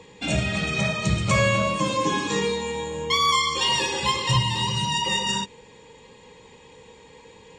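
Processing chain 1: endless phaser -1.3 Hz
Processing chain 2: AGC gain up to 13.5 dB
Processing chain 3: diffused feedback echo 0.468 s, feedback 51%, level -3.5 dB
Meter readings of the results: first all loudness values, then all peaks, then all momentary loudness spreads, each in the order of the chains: -25.5, -13.5, -21.5 LUFS; -11.0, -1.5, -8.0 dBFS; 8, 8, 15 LU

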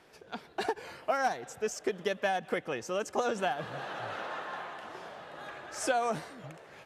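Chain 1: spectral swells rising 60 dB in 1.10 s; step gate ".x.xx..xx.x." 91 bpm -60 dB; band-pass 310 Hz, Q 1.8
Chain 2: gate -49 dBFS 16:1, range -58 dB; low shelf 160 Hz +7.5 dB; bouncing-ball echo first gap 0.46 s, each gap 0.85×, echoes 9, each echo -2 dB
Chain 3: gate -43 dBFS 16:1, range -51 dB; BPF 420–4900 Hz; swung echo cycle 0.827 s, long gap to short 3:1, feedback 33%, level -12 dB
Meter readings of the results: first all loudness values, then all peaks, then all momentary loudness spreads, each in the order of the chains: -41.0, -30.0, -35.0 LUFS; -21.5, -14.0, -16.0 dBFS; 18, 8, 16 LU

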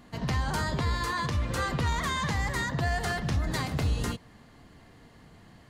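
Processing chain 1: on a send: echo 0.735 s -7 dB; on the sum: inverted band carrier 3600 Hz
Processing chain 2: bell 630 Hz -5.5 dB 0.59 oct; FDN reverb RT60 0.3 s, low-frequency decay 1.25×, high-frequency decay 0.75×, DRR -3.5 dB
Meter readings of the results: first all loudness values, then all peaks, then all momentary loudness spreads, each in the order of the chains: -25.0, -24.0 LUFS; -14.0, -10.5 dBFS; 7, 2 LU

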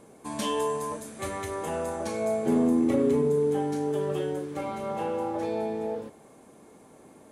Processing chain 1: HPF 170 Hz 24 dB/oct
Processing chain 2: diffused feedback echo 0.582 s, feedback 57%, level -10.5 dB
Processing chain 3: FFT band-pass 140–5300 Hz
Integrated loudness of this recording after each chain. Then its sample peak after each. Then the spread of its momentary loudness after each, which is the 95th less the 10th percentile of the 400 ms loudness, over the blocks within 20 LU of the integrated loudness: -28.5, -27.5, -28.5 LUFS; -14.5, -13.0, -13.5 dBFS; 11, 17, 12 LU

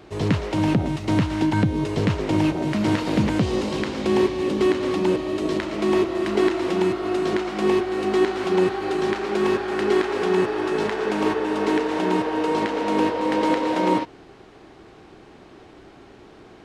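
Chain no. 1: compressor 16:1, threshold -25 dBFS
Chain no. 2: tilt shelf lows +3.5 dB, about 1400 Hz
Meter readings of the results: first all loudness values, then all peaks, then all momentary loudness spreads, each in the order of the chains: -29.5, -19.5 LUFS; -14.5, -5.0 dBFS; 18, 3 LU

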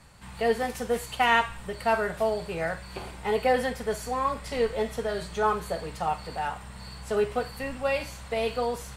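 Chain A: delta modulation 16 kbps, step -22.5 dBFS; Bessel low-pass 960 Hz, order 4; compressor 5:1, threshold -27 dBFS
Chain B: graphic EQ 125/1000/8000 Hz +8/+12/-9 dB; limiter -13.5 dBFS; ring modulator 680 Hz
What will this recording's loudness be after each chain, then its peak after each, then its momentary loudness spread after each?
-32.0, -28.0 LUFS; -18.5, -13.5 dBFS; 1, 8 LU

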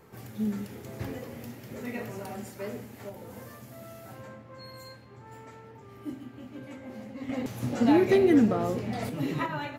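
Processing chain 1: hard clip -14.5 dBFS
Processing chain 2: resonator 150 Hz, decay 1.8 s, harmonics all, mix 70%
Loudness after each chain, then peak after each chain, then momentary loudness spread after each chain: -28.5, -38.0 LUFS; -14.5, -20.5 dBFS; 24, 24 LU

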